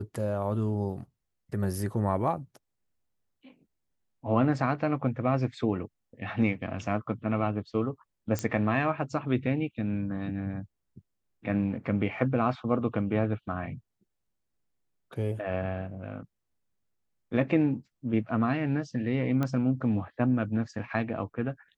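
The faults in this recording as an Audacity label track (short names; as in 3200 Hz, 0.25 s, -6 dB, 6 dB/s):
8.390000	8.390000	pop -15 dBFS
19.430000	19.430000	pop -17 dBFS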